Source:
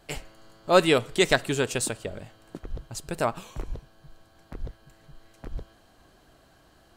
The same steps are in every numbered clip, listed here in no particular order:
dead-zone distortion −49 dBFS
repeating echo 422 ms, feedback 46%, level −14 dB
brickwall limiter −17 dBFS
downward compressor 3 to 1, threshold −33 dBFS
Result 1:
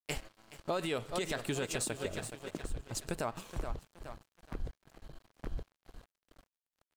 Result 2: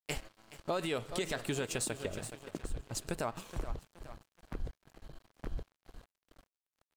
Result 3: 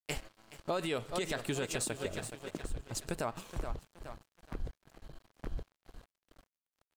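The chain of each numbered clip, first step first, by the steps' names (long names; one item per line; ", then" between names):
repeating echo, then brickwall limiter, then dead-zone distortion, then downward compressor
brickwall limiter, then repeating echo, then dead-zone distortion, then downward compressor
repeating echo, then dead-zone distortion, then brickwall limiter, then downward compressor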